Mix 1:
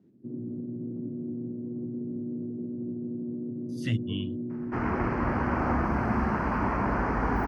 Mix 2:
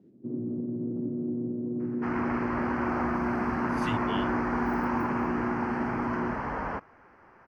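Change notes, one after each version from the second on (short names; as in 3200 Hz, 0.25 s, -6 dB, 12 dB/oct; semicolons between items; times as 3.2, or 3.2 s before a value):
first sound +10.5 dB; second sound: entry -2.70 s; master: add low shelf 370 Hz -10.5 dB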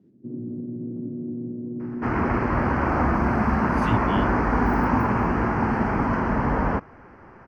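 first sound -7.0 dB; second sound +5.5 dB; master: add low shelf 370 Hz +10.5 dB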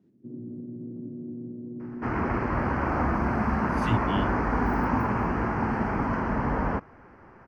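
first sound -6.0 dB; second sound -4.0 dB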